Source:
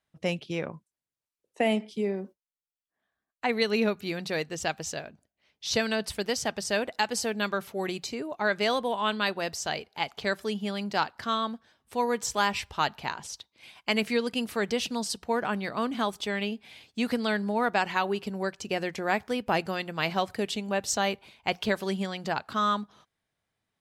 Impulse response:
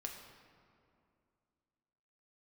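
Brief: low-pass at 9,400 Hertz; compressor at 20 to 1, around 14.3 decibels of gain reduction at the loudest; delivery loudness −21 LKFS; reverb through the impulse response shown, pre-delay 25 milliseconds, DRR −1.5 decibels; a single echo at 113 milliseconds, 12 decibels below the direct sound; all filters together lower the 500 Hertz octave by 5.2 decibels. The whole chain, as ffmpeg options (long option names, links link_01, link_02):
-filter_complex "[0:a]lowpass=9400,equalizer=frequency=500:width_type=o:gain=-6.5,acompressor=threshold=-37dB:ratio=20,aecho=1:1:113:0.251,asplit=2[link_01][link_02];[1:a]atrim=start_sample=2205,adelay=25[link_03];[link_02][link_03]afir=irnorm=-1:irlink=0,volume=3.5dB[link_04];[link_01][link_04]amix=inputs=2:normalize=0,volume=17dB"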